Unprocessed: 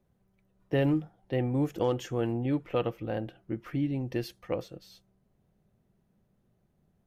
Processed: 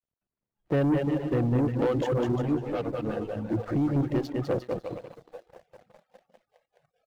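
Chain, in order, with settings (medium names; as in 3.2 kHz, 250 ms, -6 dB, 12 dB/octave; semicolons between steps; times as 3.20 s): local Wiener filter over 15 samples; band-passed feedback delay 203 ms, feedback 84%, band-pass 720 Hz, level -14.5 dB; in parallel at +1 dB: peak limiter -25 dBFS, peak gain reduction 8.5 dB; on the sum: vibrato 0.55 Hz 70 cents; bit crusher 10-bit; low-pass 2.8 kHz 6 dB/octave; bouncing-ball echo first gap 200 ms, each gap 0.75×, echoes 5; reverb removal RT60 0.91 s; waveshaping leveller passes 2; spectral noise reduction 19 dB; 2.42–3.51 s: three-phase chorus; trim -5.5 dB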